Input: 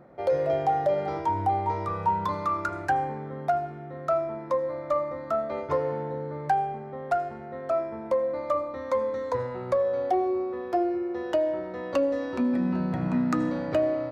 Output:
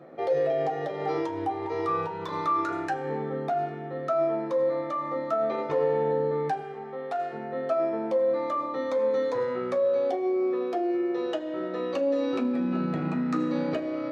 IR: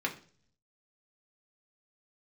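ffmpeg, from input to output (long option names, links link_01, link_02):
-filter_complex "[0:a]alimiter=level_in=1dB:limit=-24dB:level=0:latency=1:release=20,volume=-1dB,asettb=1/sr,asplit=3[link_01][link_02][link_03];[link_01]atrim=end=6.604[link_04];[link_02]atrim=start=6.6:end=7.33,asetpts=PTS-STARTPTS,afade=type=in:duration=0.004:curve=qsin,afade=type=out:start_time=0.726:duration=0.004:curve=qsin,lowshelf=frequency=340:gain=-11[link_05];[link_03]atrim=start=7.326[link_06];[link_04][link_05]acrossfade=duration=0.004:curve1=hsin:curve2=qsin[link_07];[link_07][link_06]acrossfade=duration=0.004:curve1=qsin:curve2=hsin[link_08];[1:a]atrim=start_sample=2205,asetrate=70560,aresample=44100[link_09];[link_08][link_09]afir=irnorm=-1:irlink=0,volume=4dB"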